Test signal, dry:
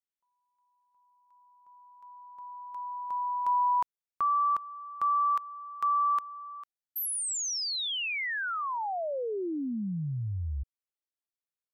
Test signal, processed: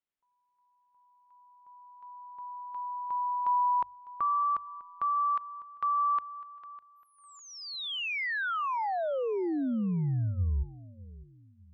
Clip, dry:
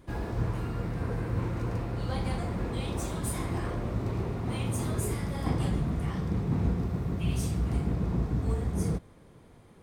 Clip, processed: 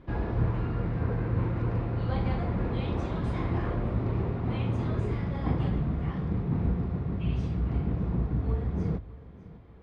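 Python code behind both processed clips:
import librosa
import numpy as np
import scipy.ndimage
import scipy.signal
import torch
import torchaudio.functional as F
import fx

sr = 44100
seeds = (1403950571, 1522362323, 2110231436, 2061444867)

p1 = scipy.signal.sosfilt(scipy.signal.bessel(4, 2700.0, 'lowpass', norm='mag', fs=sr, output='sos'), x)
p2 = fx.low_shelf(p1, sr, hz=150.0, db=3.0)
p3 = fx.hum_notches(p2, sr, base_hz=50, count=2)
p4 = fx.rider(p3, sr, range_db=3, speed_s=2.0)
y = p4 + fx.echo_feedback(p4, sr, ms=603, feedback_pct=36, wet_db=-19, dry=0)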